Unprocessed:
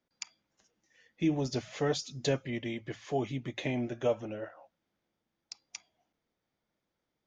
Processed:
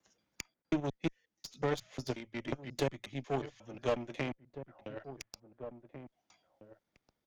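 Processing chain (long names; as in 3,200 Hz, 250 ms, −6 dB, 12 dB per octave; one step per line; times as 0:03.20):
slices reordered back to front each 180 ms, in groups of 4
harmonic generator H 2 −9 dB, 4 −30 dB, 7 −20 dB, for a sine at −17.5 dBFS
slap from a distant wall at 300 metres, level −17 dB
multiband upward and downward compressor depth 40%
level −2 dB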